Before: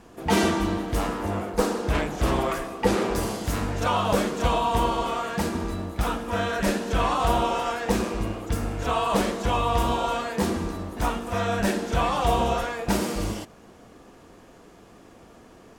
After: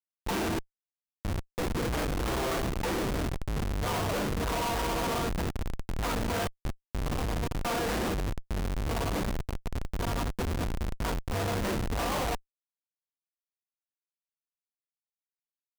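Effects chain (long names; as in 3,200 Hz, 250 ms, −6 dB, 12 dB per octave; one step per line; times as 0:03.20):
0:08.29–0:10.64: delay that plays each chunk backwards 529 ms, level −2.5 dB
dynamic equaliser 190 Hz, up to −6 dB, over −38 dBFS, Q 1.3
sample-and-hold tremolo 1.7 Hz, depth 100%
comparator with hysteresis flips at −31 dBFS
level +2.5 dB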